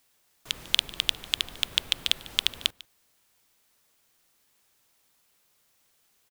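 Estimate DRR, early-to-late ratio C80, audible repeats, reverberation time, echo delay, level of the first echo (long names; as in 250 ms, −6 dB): no reverb audible, no reverb audible, 1, no reverb audible, 148 ms, −21.0 dB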